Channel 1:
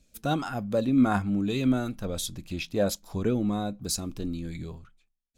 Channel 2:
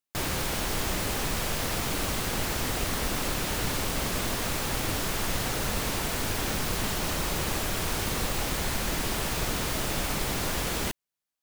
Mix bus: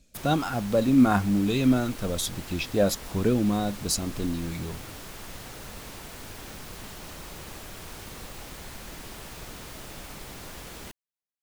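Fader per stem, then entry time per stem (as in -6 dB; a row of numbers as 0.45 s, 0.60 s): +3.0 dB, -12.0 dB; 0.00 s, 0.00 s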